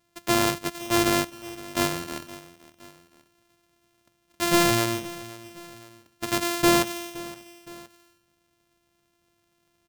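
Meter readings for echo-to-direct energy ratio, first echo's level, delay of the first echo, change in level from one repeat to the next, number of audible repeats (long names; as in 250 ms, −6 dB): −17.0 dB, −18.0 dB, 517 ms, −6.0 dB, 2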